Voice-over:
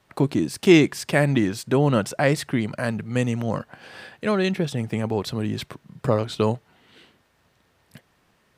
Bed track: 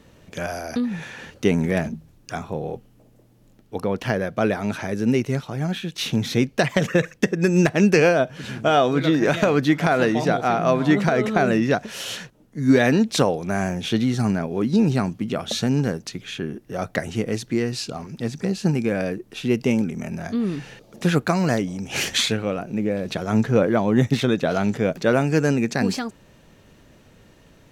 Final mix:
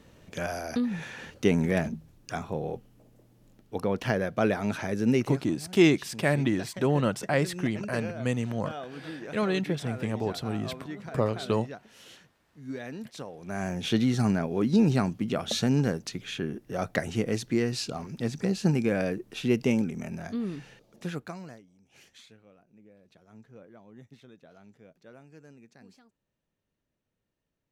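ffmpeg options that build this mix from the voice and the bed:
-filter_complex "[0:a]adelay=5100,volume=-5.5dB[a];[1:a]volume=14dB,afade=t=out:st=5.19:d=0.27:silence=0.133352,afade=t=in:st=13.32:d=0.59:silence=0.125893,afade=t=out:st=19.44:d=2.18:silence=0.0354813[b];[a][b]amix=inputs=2:normalize=0"

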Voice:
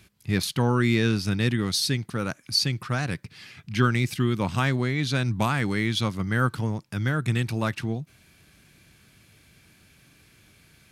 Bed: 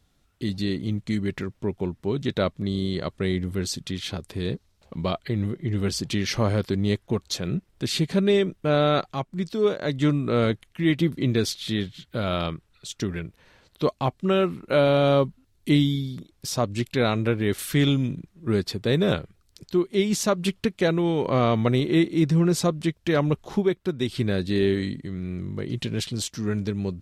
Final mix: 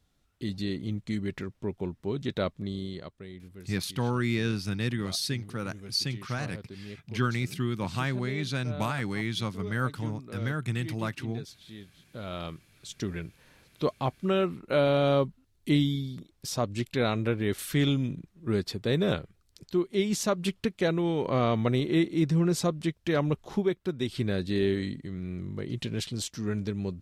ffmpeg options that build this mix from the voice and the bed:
-filter_complex "[0:a]adelay=3400,volume=-6dB[a];[1:a]volume=9.5dB,afade=t=out:st=2.5:d=0.76:silence=0.199526,afade=t=in:st=11.87:d=1.27:silence=0.177828[b];[a][b]amix=inputs=2:normalize=0"

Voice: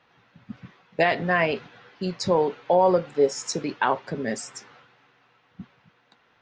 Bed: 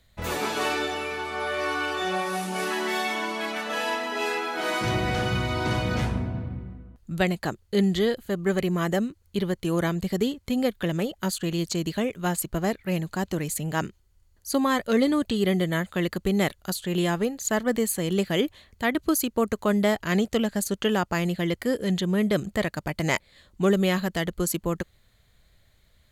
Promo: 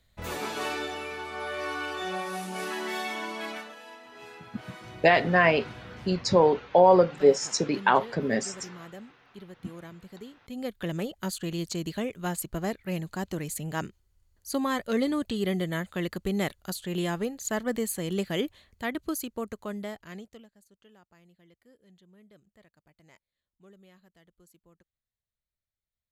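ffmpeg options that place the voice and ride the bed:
-filter_complex "[0:a]adelay=4050,volume=1.5dB[a];[1:a]volume=9dB,afade=t=out:st=3.52:d=0.23:silence=0.199526,afade=t=in:st=10.41:d=0.49:silence=0.188365,afade=t=out:st=18.41:d=2.1:silence=0.0354813[b];[a][b]amix=inputs=2:normalize=0"

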